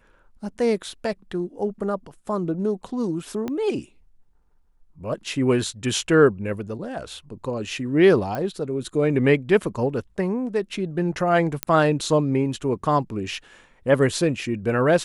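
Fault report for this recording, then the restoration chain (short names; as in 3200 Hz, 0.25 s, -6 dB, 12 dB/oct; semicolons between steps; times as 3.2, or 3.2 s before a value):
3.48 pop -16 dBFS
8.35 pop -16 dBFS
11.63 pop -5 dBFS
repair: de-click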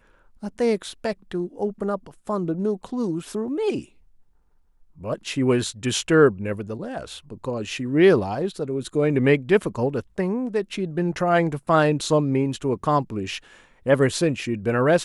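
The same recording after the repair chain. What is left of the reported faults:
3.48 pop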